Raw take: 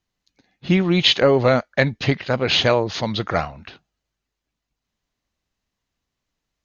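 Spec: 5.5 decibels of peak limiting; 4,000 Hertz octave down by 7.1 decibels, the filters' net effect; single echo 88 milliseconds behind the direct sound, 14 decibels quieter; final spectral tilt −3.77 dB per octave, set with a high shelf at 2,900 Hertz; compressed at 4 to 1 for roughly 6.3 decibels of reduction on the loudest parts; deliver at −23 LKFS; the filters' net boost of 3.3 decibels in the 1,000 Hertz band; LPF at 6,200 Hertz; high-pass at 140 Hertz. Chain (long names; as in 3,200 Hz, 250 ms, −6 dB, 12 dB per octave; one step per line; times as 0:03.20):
high-pass filter 140 Hz
low-pass filter 6,200 Hz
parametric band 1,000 Hz +5.5 dB
high-shelf EQ 2,900 Hz −4 dB
parametric band 4,000 Hz −6.5 dB
downward compressor 4 to 1, threshold −17 dBFS
brickwall limiter −11 dBFS
single-tap delay 88 ms −14 dB
level +1.5 dB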